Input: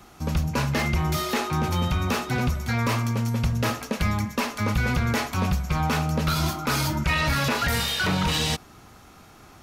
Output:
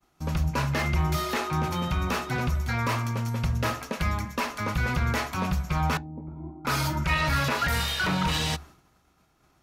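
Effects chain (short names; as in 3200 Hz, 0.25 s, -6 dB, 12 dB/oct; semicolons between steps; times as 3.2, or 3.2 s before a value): dynamic EQ 1300 Hz, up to +4 dB, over -40 dBFS, Q 0.71; expander -40 dBFS; 5.97–6.65 vocal tract filter u; on a send: reverb RT60 0.10 s, pre-delay 3 ms, DRR 15.5 dB; on the sum: gain -4.5 dB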